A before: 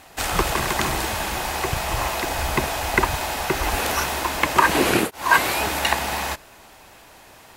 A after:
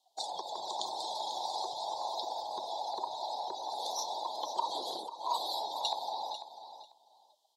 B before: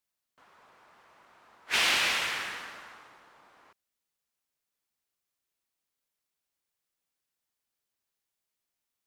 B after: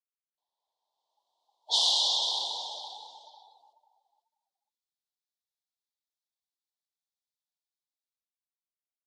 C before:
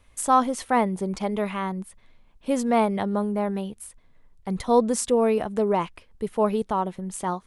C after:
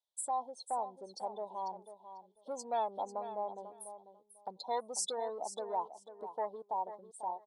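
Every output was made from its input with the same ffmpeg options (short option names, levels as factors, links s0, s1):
-filter_complex "[0:a]highshelf=f=4300:g=-7,dynaudnorm=f=130:g=17:m=6.31,asuperstop=centerf=1800:order=12:qfactor=0.7,asplit=2[s0][s1];[s1]asoftclip=type=tanh:threshold=0.126,volume=0.355[s2];[s0][s2]amix=inputs=2:normalize=0,afftdn=nr=29:nf=-31,acompressor=threshold=0.00794:ratio=2,highpass=920,equalizer=f=2600:t=o:w=2.6:g=11.5,asplit=2[s3][s4];[s4]aecho=0:1:494|988:0.266|0.0452[s5];[s3][s5]amix=inputs=2:normalize=0"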